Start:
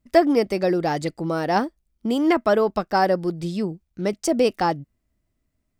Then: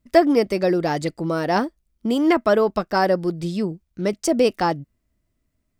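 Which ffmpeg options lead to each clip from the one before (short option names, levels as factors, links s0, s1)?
-af "bandreject=f=790:w=12,volume=1.19"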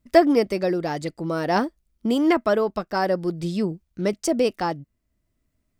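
-af "tremolo=f=0.53:d=0.41"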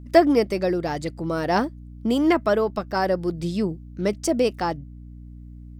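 -af "aeval=exprs='val(0)+0.0112*(sin(2*PI*60*n/s)+sin(2*PI*2*60*n/s)/2+sin(2*PI*3*60*n/s)/3+sin(2*PI*4*60*n/s)/4+sin(2*PI*5*60*n/s)/5)':c=same"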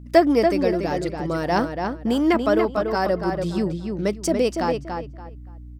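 -filter_complex "[0:a]asplit=2[s0][s1];[s1]adelay=286,lowpass=f=3500:p=1,volume=0.562,asplit=2[s2][s3];[s3]adelay=286,lowpass=f=3500:p=1,volume=0.25,asplit=2[s4][s5];[s5]adelay=286,lowpass=f=3500:p=1,volume=0.25[s6];[s0][s2][s4][s6]amix=inputs=4:normalize=0"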